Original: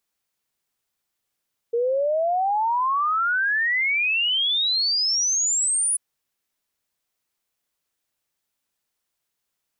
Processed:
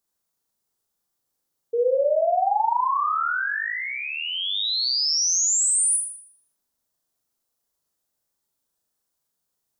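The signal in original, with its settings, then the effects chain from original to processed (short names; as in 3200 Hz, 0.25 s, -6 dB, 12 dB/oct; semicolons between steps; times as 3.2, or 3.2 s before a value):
log sweep 460 Hz -> 10000 Hz 4.24 s -19 dBFS
bell 2400 Hz -11 dB 1.3 oct; flutter echo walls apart 6.8 m, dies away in 0.62 s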